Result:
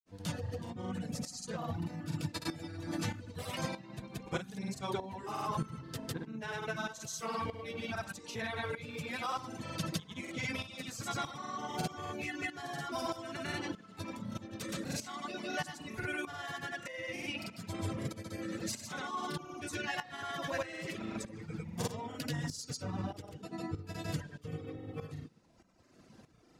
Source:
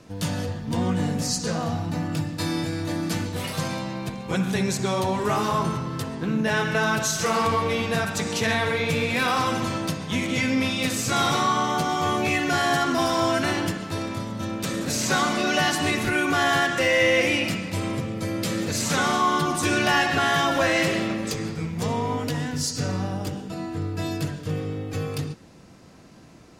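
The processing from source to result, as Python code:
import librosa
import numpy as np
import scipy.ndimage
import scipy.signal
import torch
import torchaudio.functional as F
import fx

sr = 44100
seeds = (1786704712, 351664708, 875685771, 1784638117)

y = fx.dereverb_blind(x, sr, rt60_s=1.2)
y = fx.rider(y, sr, range_db=4, speed_s=0.5)
y = fx.granulator(y, sr, seeds[0], grain_ms=100.0, per_s=20.0, spray_ms=100.0, spread_st=0)
y = fx.tremolo_shape(y, sr, shape='saw_up', hz=1.6, depth_pct=75)
y = y * 10.0 ** (-7.5 / 20.0)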